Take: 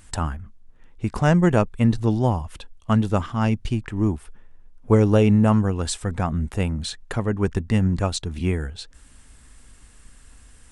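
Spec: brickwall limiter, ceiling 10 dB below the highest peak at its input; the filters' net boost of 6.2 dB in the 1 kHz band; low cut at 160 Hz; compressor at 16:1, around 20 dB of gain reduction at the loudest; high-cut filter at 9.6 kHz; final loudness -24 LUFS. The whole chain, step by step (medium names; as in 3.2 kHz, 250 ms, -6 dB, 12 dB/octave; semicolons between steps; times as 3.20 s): high-pass 160 Hz; low-pass 9.6 kHz; peaking EQ 1 kHz +8 dB; compression 16:1, threshold -31 dBFS; trim +15 dB; peak limiter -10 dBFS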